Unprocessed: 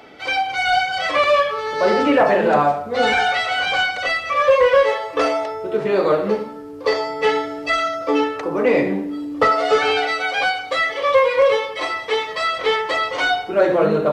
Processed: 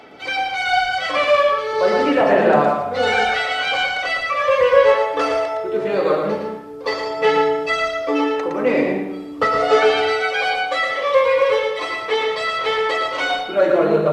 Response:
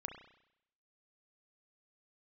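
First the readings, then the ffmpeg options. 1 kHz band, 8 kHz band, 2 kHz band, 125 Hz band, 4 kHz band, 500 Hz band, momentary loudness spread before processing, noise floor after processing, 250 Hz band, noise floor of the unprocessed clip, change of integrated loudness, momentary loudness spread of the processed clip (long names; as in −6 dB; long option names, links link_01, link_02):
0.0 dB, can't be measured, 0.0 dB, 0.0 dB, 0.0 dB, +1.0 dB, 7 LU, −30 dBFS, 0.0 dB, −33 dBFS, +0.5 dB, 8 LU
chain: -filter_complex "[0:a]lowshelf=frequency=74:gain=-7.5,aphaser=in_gain=1:out_gain=1:delay=3.8:decay=0.29:speed=0.41:type=sinusoidal,asplit=2[link_01][link_02];[1:a]atrim=start_sample=2205,lowshelf=frequency=140:gain=8.5,adelay=114[link_03];[link_02][link_03]afir=irnorm=-1:irlink=0,volume=-1.5dB[link_04];[link_01][link_04]amix=inputs=2:normalize=0,volume=-2dB"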